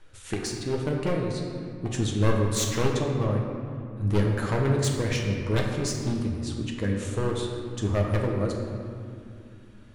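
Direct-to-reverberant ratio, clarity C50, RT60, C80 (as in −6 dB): −0.5 dB, 2.5 dB, 2.4 s, 4.0 dB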